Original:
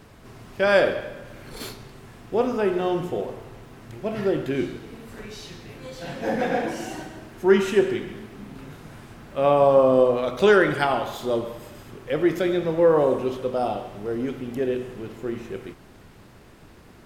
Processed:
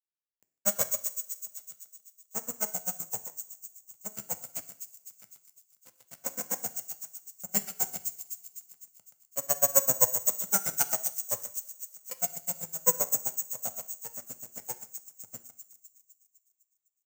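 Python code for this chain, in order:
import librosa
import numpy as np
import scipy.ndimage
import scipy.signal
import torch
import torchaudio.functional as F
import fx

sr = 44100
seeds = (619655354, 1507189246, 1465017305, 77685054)

p1 = fx.lower_of_two(x, sr, delay_ms=1.4)
p2 = np.sign(p1) * np.maximum(np.abs(p1) - 10.0 ** (-37.0 / 20.0), 0.0)
p3 = fx.granulator(p2, sr, seeds[0], grain_ms=65.0, per_s=7.7, spray_ms=16.0, spread_st=0)
p4 = fx.rev_double_slope(p3, sr, seeds[1], early_s=0.56, late_s=2.1, knee_db=-21, drr_db=10.0)
p5 = (np.kron(scipy.signal.resample_poly(p4, 1, 6), np.eye(6)[0]) * 6)[:len(p4)]
p6 = scipy.signal.sosfilt(scipy.signal.butter(4, 110.0, 'highpass', fs=sr, output='sos'), p5)
p7 = p6 + fx.echo_wet_highpass(p6, sr, ms=253, feedback_pct=54, hz=5200.0, wet_db=-4, dry=0)
y = p7 * 10.0 ** (-8.5 / 20.0)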